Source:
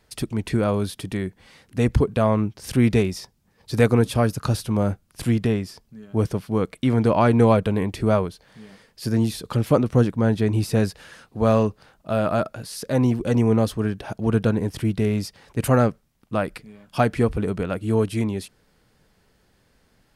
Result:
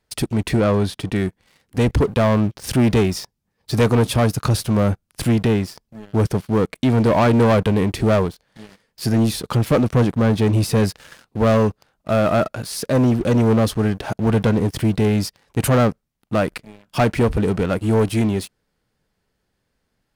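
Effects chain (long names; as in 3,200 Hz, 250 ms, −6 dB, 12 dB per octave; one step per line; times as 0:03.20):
leveller curve on the samples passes 3
0:00.55–0:01.14: high-shelf EQ 11,000 Hz → 7,200 Hz −12 dB
level −4.5 dB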